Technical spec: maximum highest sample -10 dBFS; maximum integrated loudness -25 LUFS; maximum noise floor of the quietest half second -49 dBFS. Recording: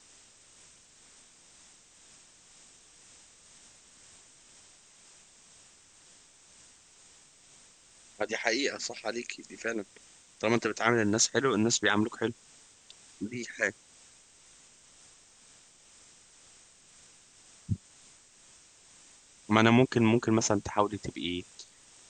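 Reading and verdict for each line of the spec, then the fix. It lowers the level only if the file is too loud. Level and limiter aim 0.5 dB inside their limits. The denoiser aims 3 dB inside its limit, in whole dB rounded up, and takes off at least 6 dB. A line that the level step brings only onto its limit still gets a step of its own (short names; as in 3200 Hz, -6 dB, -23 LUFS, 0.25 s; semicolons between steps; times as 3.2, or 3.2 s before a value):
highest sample -5.5 dBFS: fail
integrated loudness -29.0 LUFS: OK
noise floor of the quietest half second -58 dBFS: OK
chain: limiter -10.5 dBFS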